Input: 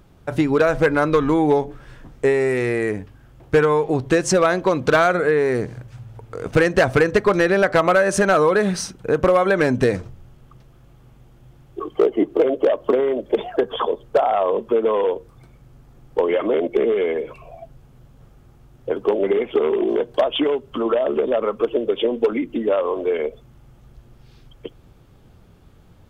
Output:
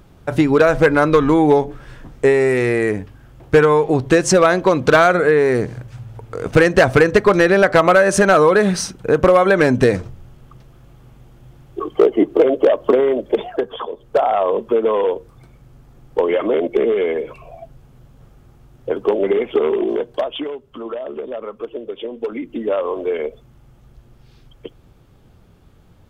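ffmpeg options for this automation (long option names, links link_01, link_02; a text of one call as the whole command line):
ffmpeg -i in.wav -af "volume=21dB,afade=type=out:start_time=13.11:duration=0.8:silence=0.281838,afade=type=in:start_time=13.91:duration=0.31:silence=0.354813,afade=type=out:start_time=19.68:duration=0.85:silence=0.316228,afade=type=in:start_time=22.14:duration=0.63:silence=0.398107" out.wav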